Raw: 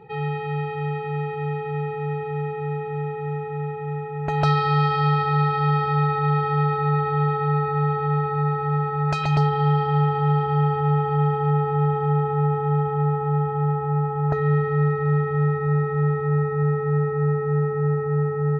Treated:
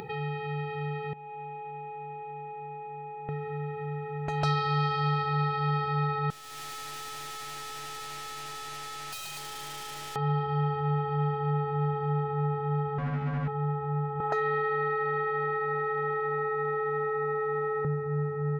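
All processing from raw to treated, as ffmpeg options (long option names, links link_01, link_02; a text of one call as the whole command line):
ffmpeg -i in.wav -filter_complex "[0:a]asettb=1/sr,asplit=3[link_01][link_02][link_03];[link_01]atrim=end=1.134[link_04];[link_02]atrim=start=1.13:end=3.29,asetpts=PTS-STARTPTS,afade=type=in:duration=0.004:curve=qsin,afade=type=out:start_time=2.156:duration=0.004:curve=qsin,asplit=3[link_05][link_06][link_07];[link_05]bandpass=frequency=300:width_type=q:width=8,volume=0dB[link_08];[link_06]bandpass=frequency=870:width_type=q:width=8,volume=-6dB[link_09];[link_07]bandpass=frequency=2240:width_type=q:width=8,volume=-9dB[link_10];[link_08][link_09][link_10]amix=inputs=3:normalize=0,asplit=2[link_11][link_12];[link_12]adelay=37,volume=-13dB[link_13];[link_11][link_13]amix=inputs=2:normalize=0,atrim=end_sample=95256[link_14];[link_03]atrim=start=3.286[link_15];[link_04][link_14]acrossfade=duration=0.004:curve1=hsin:curve2=qsin[link_16];[link_16][link_15]acrossfade=duration=0.004:curve1=qsin:curve2=hsin,asettb=1/sr,asplit=3[link_17][link_18][link_19];[link_17]atrim=end=6.304[link_20];[link_18]atrim=start=6.3:end=10.16,asetpts=PTS-STARTPTS,afade=type=in:duration=0.004:curve=qsin,afade=type=out:start_time=3.856:duration=0.004:curve=qsin,highpass=frequency=1200:poles=1,equalizer=frequency=3600:width_type=o:width=0.96:gain=9,aeval=exprs='(tanh(126*val(0)+0.4)-tanh(0.4))/126':channel_layout=same[link_21];[link_19]atrim=start=10.156[link_22];[link_20][link_21]acrossfade=duration=0.004:curve1=hsin:curve2=qsin[link_23];[link_23][link_22]acrossfade=duration=0.004:curve1=qsin:curve2=hsin,asettb=1/sr,asplit=3[link_24][link_25][link_26];[link_24]atrim=end=12.984[link_27];[link_25]atrim=start=12.98:end=13.48,asetpts=PTS-STARTPTS,afade=type=in:duration=0.004:curve=qsin,afade=type=out:start_time=0.496:duration=0.004:curve=qsin,aeval=exprs='0.075*(abs(mod(val(0)/0.075+3,4)-2)-1)':channel_layout=same,lowpass=1800,lowshelf=frequency=290:width_type=q:width=3:gain=6[link_28];[link_26]atrim=start=13.476[link_29];[link_27][link_28]acrossfade=duration=0.004:curve1=hsin:curve2=qsin[link_30];[link_30][link_29]acrossfade=duration=0.004:curve1=qsin:curve2=hsin,asettb=1/sr,asplit=3[link_31][link_32][link_33];[link_31]atrim=end=14.204[link_34];[link_32]atrim=start=14.2:end=17.85,asetpts=PTS-STARTPTS,afade=type=in:duration=0.004:curve=qsin,afade=type=out:start_time=3.646:duration=0.004:curve=qsin,highpass=480,acontrast=88[link_35];[link_33]atrim=start=17.846[link_36];[link_34][link_35]acrossfade=duration=0.004:curve1=hsin:curve2=qsin[link_37];[link_37][link_36]acrossfade=duration=0.004:curve1=qsin:curve2=hsin,highshelf=frequency=4000:gain=10.5,acompressor=mode=upward:threshold=-22dB:ratio=2.5,volume=-8dB" out.wav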